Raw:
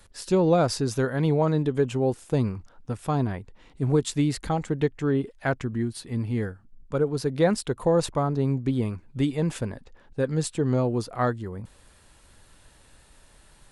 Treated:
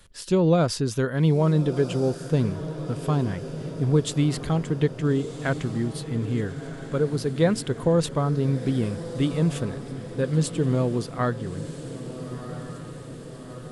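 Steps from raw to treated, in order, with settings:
thirty-one-band graphic EQ 160 Hz +5 dB, 800 Hz −6 dB, 3,150 Hz +5 dB
feedback delay with all-pass diffusion 1,325 ms, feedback 64%, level −12 dB

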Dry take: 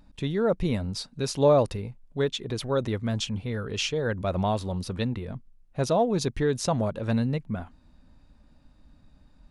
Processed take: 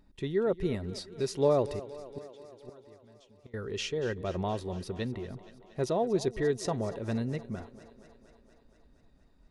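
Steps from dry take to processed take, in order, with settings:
hollow resonant body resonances 380/1,900 Hz, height 11 dB, ringing for 45 ms
0:01.78–0:03.54: gate with flip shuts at −22 dBFS, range −25 dB
feedback echo with a high-pass in the loop 235 ms, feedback 70%, high-pass 160 Hz, level −16 dB
level −7.5 dB

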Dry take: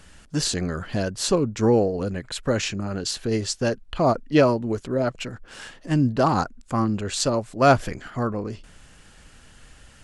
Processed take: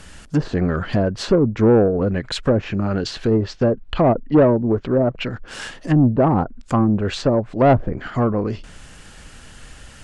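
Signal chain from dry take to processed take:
0:03.31–0:05.47: low-pass filter 5,400 Hz 12 dB per octave
treble cut that deepens with the level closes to 670 Hz, closed at −19 dBFS
soft clipping −15 dBFS, distortion −16 dB
level +8 dB

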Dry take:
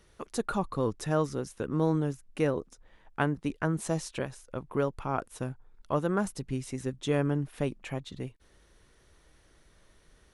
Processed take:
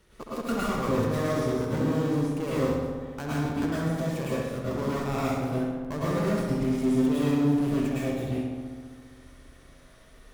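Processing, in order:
gap after every zero crossing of 0.11 ms
brickwall limiter −20 dBFS, peak gain reduction 7 dB
asymmetric clip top −37.5 dBFS, bottom −26 dBFS
on a send: feedback echo with a low-pass in the loop 66 ms, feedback 80%, low-pass 3,400 Hz, level −5 dB
on the sum: dense smooth reverb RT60 0.63 s, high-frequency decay 1×, pre-delay 95 ms, DRR −6.5 dB

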